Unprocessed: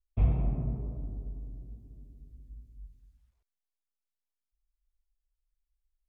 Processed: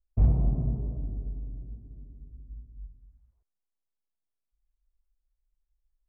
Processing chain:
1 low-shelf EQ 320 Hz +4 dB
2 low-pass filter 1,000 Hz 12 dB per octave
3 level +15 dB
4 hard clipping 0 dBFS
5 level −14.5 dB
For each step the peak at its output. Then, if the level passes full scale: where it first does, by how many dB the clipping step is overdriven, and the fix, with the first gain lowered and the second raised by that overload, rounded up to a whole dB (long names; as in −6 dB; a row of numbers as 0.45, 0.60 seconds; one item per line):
−11.0, −11.0, +4.0, 0.0, −14.5 dBFS
step 3, 4.0 dB
step 3 +11 dB, step 5 −10.5 dB